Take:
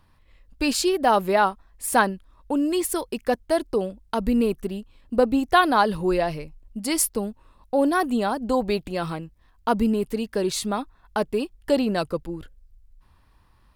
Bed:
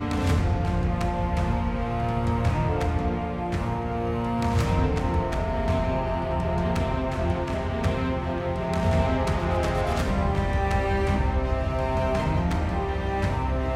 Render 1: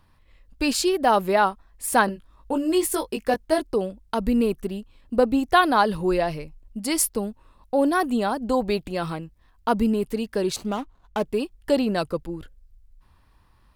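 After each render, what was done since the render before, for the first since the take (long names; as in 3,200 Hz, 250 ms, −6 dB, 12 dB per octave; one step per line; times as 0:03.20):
0:02.06–0:03.60: double-tracking delay 19 ms −4.5 dB
0:10.56–0:11.24: running median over 25 samples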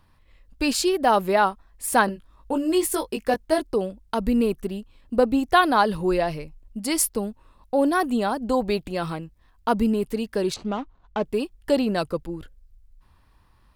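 0:10.54–0:11.23: high-frequency loss of the air 120 metres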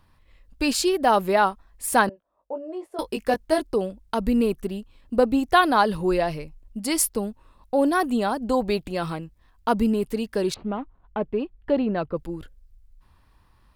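0:02.09–0:02.99: resonant band-pass 620 Hz, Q 3.6
0:10.54–0:12.17: high-frequency loss of the air 440 metres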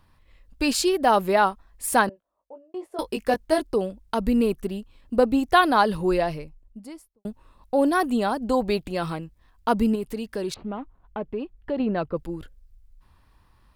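0:01.93–0:02.74: fade out
0:06.12–0:07.25: fade out and dull
0:09.95–0:11.80: downward compressor 1.5 to 1, threshold −33 dBFS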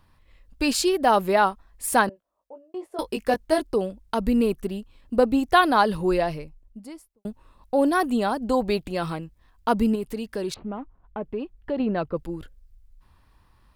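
0:10.59–0:11.23: high-frequency loss of the air 280 metres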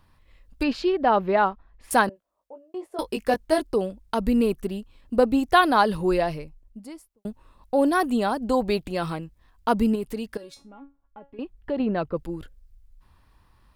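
0:00.63–0:01.91: high-frequency loss of the air 280 metres
0:10.37–0:11.39: tuned comb filter 280 Hz, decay 0.24 s, mix 90%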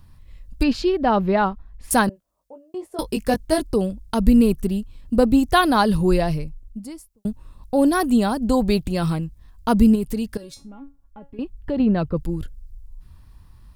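0:12.68–0:13.12: healed spectral selection 470–1,100 Hz both
bass and treble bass +13 dB, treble +8 dB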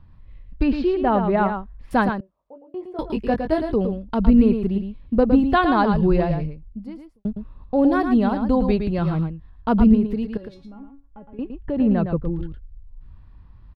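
high-frequency loss of the air 360 metres
on a send: single-tap delay 112 ms −7 dB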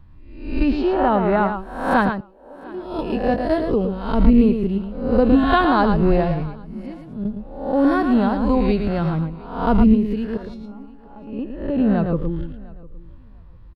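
peak hold with a rise ahead of every peak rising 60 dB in 0.65 s
repeating echo 702 ms, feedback 18%, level −23 dB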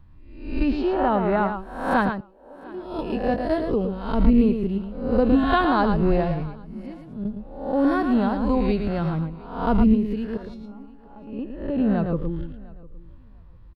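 level −3.5 dB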